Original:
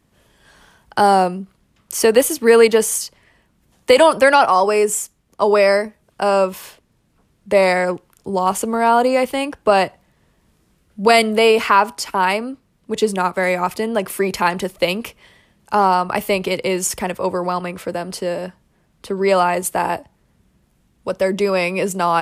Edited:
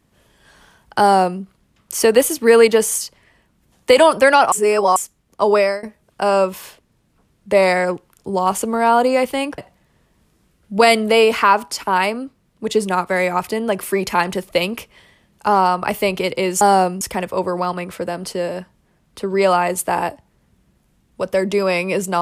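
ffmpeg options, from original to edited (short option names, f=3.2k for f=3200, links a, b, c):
-filter_complex "[0:a]asplit=7[a][b][c][d][e][f][g];[a]atrim=end=4.522[h];[b]atrim=start=4.518:end=4.962,asetpts=PTS-STARTPTS,areverse[i];[c]atrim=start=4.958:end=5.83,asetpts=PTS-STARTPTS,afade=t=out:st=0.602:d=0.27:silence=0.0891251[j];[d]atrim=start=5.83:end=9.582,asetpts=PTS-STARTPTS,afade=t=in:d=0.004:c=hsin:silence=0.0891251[k];[e]atrim=start=9.848:end=16.882[l];[f]atrim=start=1.008:end=1.412[m];[g]atrim=start=16.878[n];[h][i]acrossfade=d=0.004:c1=hsin:c2=hsin[o];[j][k]concat=n=2:v=0:a=1[p];[o][p]acrossfade=d=0.004:c1=hsin:c2=hsin[q];[q][l]acrossfade=d=0.004:c1=hsin:c2=hsin[r];[r][m]acrossfade=d=0.004:c1=hsin:c2=hsin[s];[s][n]acrossfade=d=0.004:c1=hsin:c2=hsin"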